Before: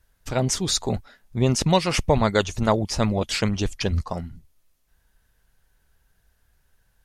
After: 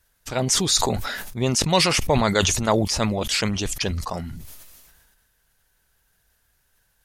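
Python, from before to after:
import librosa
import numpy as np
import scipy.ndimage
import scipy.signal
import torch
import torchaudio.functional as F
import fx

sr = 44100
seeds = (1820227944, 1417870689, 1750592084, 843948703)

y = fx.tilt_eq(x, sr, slope=1.5)
y = fx.sustainer(y, sr, db_per_s=34.0)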